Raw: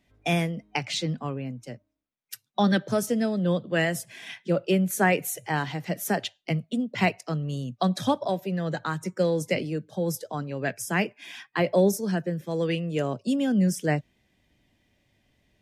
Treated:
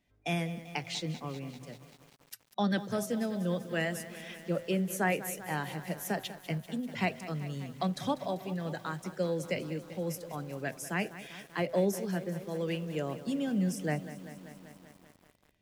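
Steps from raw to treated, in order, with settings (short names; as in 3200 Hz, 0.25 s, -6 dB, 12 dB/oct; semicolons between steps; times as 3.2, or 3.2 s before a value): de-hum 128.5 Hz, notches 6; lo-fi delay 0.195 s, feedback 80%, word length 7-bit, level -14 dB; gain -7.5 dB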